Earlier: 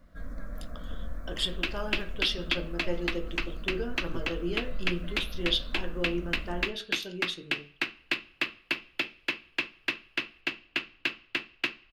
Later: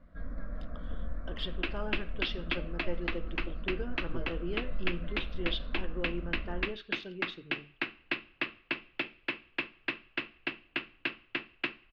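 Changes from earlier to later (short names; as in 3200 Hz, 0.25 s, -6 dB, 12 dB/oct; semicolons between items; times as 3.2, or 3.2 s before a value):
speech: send off; master: add air absorption 300 m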